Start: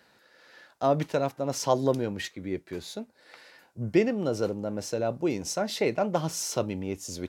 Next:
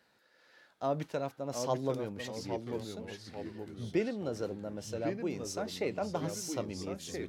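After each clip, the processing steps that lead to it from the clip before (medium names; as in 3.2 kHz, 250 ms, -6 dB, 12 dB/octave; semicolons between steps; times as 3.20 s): ever faster or slower copies 615 ms, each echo -2 st, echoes 3, each echo -6 dB; trim -8.5 dB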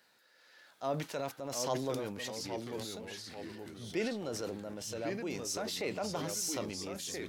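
tilt EQ +2 dB/octave; transient shaper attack -3 dB, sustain +6 dB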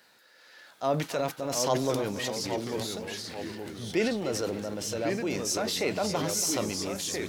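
bit-crushed delay 282 ms, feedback 55%, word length 10-bit, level -14 dB; trim +7.5 dB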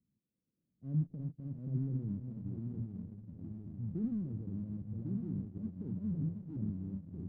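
inverse Chebyshev low-pass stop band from 1.2 kHz, stop band 80 dB; in parallel at -4 dB: hysteresis with a dead band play -48 dBFS; on the sum: trim -2 dB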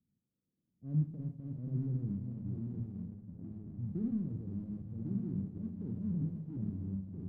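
level-controlled noise filter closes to 610 Hz, open at -35 dBFS; on a send at -8.5 dB: reverberation RT60 0.40 s, pre-delay 35 ms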